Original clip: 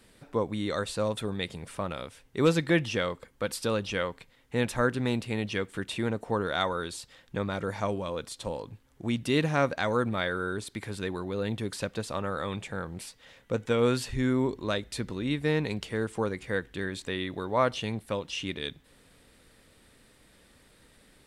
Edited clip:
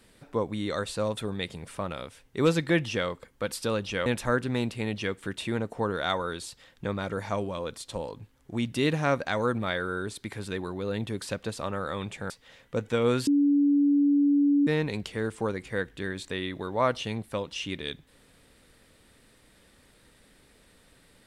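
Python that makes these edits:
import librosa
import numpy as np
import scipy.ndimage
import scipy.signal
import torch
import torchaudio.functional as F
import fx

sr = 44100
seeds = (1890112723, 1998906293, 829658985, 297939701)

y = fx.edit(x, sr, fx.cut(start_s=4.06, length_s=0.51),
    fx.cut(start_s=12.81, length_s=0.26),
    fx.bleep(start_s=14.04, length_s=1.4, hz=286.0, db=-18.5), tone=tone)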